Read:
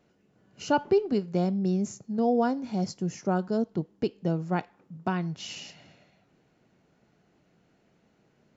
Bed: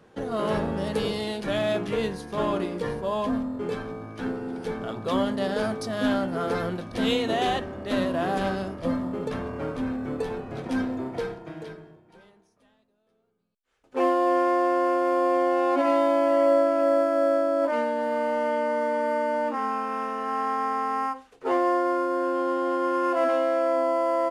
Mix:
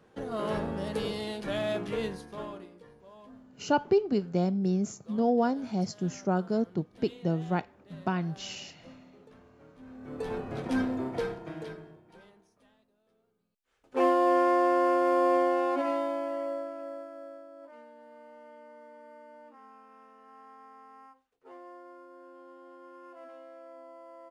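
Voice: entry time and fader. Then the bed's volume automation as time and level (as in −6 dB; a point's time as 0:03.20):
3.00 s, −1.0 dB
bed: 0:02.14 −5.5 dB
0:02.87 −25 dB
0:09.74 −25 dB
0:10.34 −1.5 dB
0:15.35 −1.5 dB
0:17.49 −25.5 dB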